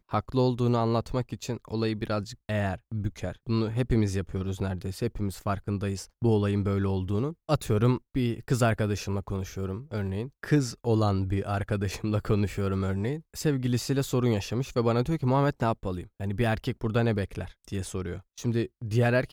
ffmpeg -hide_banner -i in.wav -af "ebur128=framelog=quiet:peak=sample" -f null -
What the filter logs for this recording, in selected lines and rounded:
Integrated loudness:
  I:         -28.7 LUFS
  Threshold: -38.7 LUFS
Loudness range:
  LRA:         3.0 LU
  Threshold: -48.7 LUFS
  LRA low:   -30.4 LUFS
  LRA high:  -27.4 LUFS
Sample peak:
  Peak:       -9.8 dBFS